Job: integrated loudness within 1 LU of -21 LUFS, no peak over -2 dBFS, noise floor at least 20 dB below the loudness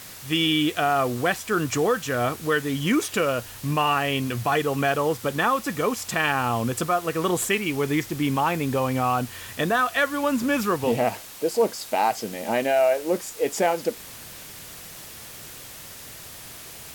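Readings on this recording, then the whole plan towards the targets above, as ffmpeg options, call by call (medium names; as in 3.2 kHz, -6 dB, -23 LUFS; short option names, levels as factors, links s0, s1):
noise floor -41 dBFS; noise floor target -44 dBFS; loudness -24.0 LUFS; peak level -9.0 dBFS; loudness target -21.0 LUFS
-> -af "afftdn=nr=6:nf=-41"
-af "volume=1.41"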